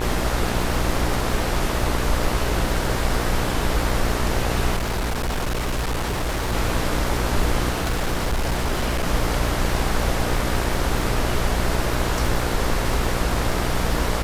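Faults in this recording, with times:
mains buzz 60 Hz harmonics 38 −26 dBFS
surface crackle 110 per second −28 dBFS
0:04.76–0:06.53: clipping −20.5 dBFS
0:07.70–0:09.07: clipping −18 dBFS

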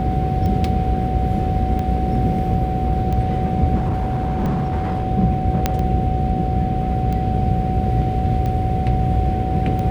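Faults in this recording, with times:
mains buzz 60 Hz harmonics 11 −24 dBFS
scratch tick 45 rpm −15 dBFS
whistle 750 Hz −24 dBFS
0:03.75–0:05.04: clipping −16.5 dBFS
0:05.66: click −3 dBFS

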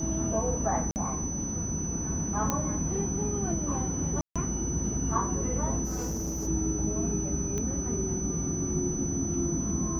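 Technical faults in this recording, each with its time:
whistle 6,000 Hz −34 dBFS
0:00.91–0:00.96: drop-out 49 ms
0:02.50: click −12 dBFS
0:04.21–0:04.36: drop-out 146 ms
0:05.84–0:06.48: clipping −29 dBFS
0:07.58: click −20 dBFS

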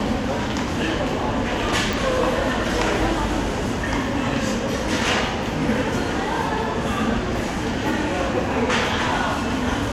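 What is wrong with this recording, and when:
0:01.93: click

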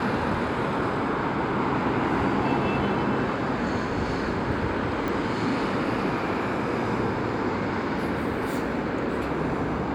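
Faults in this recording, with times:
0:05.08: click

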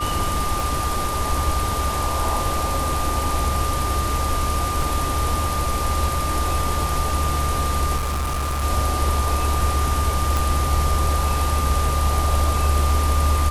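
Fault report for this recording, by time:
whistle 1,200 Hz −25 dBFS
0:00.60: click
0:04.82: drop-out 2.8 ms
0:07.96–0:08.64: clipping −20.5 dBFS
0:10.37: click

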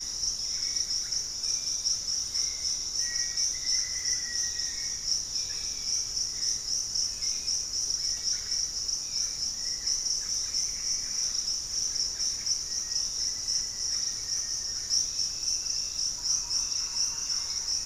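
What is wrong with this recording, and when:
surface crackle 19 per second −38 dBFS

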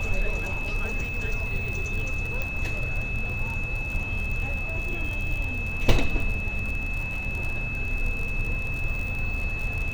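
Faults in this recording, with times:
surface crackle 60 per second −30 dBFS
whistle 2,600 Hz −31 dBFS
0:02.42: click

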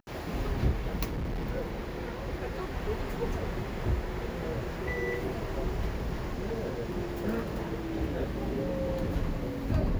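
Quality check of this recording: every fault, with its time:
0:01.07–0:01.49: clipping −30 dBFS

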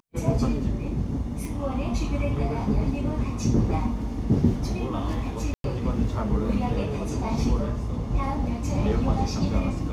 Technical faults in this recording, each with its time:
0:01.45: click
0:05.54–0:05.64: drop-out 102 ms

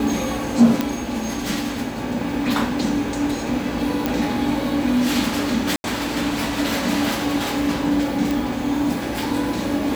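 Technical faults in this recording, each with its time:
0:00.81: click −6 dBFS
0:04.06: click
0:05.76–0:05.84: drop-out 81 ms
0:08.31: click

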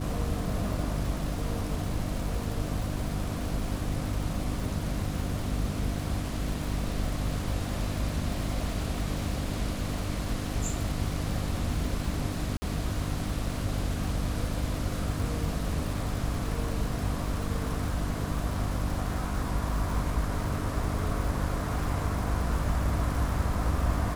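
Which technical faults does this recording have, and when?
surface crackle 400 per second −37 dBFS
mains hum 50 Hz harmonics 6 −34 dBFS
0:12.57–0:12.62: drop-out 50 ms

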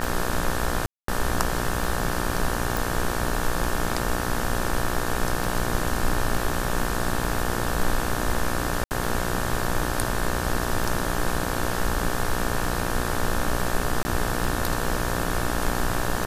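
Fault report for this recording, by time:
mains buzz 60 Hz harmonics 30 −29 dBFS
scratch tick 33 1/3 rpm
0:00.86–0:01.08: drop-out 223 ms
0:02.77: click
0:08.84–0:08.91: drop-out 69 ms
0:14.03–0:14.05: drop-out 20 ms

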